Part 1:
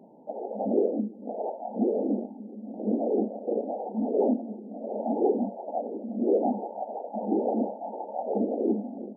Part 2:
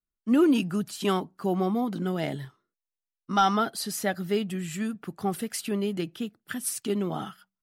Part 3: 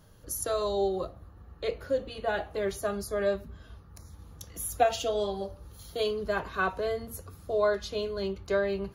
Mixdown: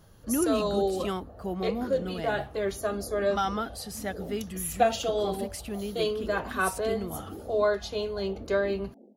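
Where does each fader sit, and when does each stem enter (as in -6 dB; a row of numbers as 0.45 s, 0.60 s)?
-16.5 dB, -6.5 dB, +1.0 dB; 0.00 s, 0.00 s, 0.00 s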